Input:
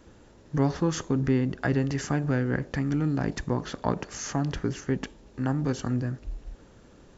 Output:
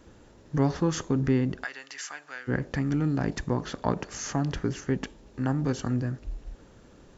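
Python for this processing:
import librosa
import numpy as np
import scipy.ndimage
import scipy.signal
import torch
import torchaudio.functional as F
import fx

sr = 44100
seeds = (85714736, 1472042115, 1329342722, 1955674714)

y = fx.highpass(x, sr, hz=1500.0, slope=12, at=(1.63, 2.47), fade=0.02)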